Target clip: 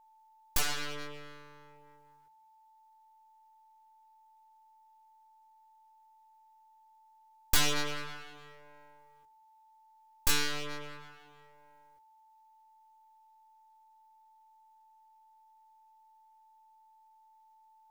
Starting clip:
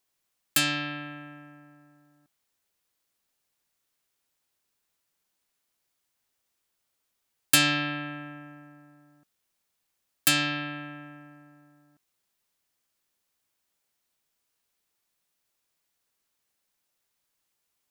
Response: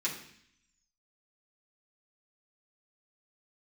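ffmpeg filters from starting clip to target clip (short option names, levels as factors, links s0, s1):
-filter_complex "[0:a]flanger=delay=17.5:depth=3.7:speed=0.34,aeval=exprs='abs(val(0))':c=same,asplit=2[s0][s1];[1:a]atrim=start_sample=2205,lowpass=6700[s2];[s1][s2]afir=irnorm=-1:irlink=0,volume=0.1[s3];[s0][s3]amix=inputs=2:normalize=0,aeval=exprs='val(0)+0.001*sin(2*PI*880*n/s)':c=same"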